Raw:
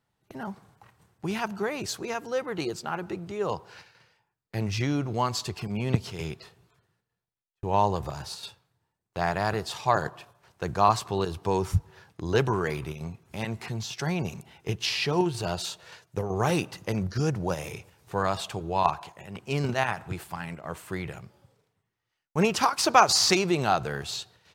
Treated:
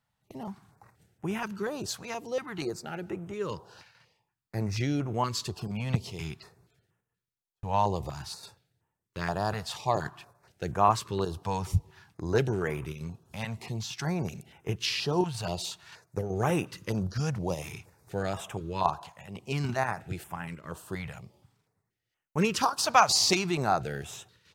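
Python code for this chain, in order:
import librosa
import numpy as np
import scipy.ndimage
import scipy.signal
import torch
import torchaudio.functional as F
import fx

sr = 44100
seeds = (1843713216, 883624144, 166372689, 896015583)

y = fx.filter_held_notch(x, sr, hz=4.2, low_hz=360.0, high_hz=4400.0)
y = y * 10.0 ** (-1.5 / 20.0)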